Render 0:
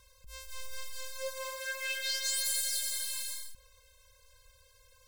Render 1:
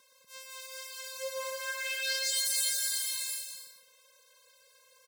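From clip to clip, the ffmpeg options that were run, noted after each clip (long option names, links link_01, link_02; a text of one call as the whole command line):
ffmpeg -i in.wav -filter_complex "[0:a]highpass=frequency=210:width=0.5412,highpass=frequency=210:width=1.3066,asplit=2[link_01][link_02];[link_02]aecho=0:1:120|210|277.5|328.1|366.1:0.631|0.398|0.251|0.158|0.1[link_03];[link_01][link_03]amix=inputs=2:normalize=0" out.wav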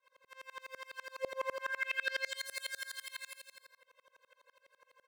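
ffmpeg -i in.wav -filter_complex "[0:a]acrossover=split=500 2500:gain=0.2 1 0.0794[link_01][link_02][link_03];[link_01][link_02][link_03]amix=inputs=3:normalize=0,aeval=exprs='val(0)*pow(10,-29*if(lt(mod(-12*n/s,1),2*abs(-12)/1000),1-mod(-12*n/s,1)/(2*abs(-12)/1000),(mod(-12*n/s,1)-2*abs(-12)/1000)/(1-2*abs(-12)/1000))/20)':channel_layout=same,volume=10.5dB" out.wav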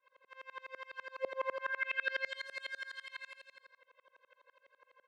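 ffmpeg -i in.wav -af "highpass=250,lowpass=2900,volume=1dB" out.wav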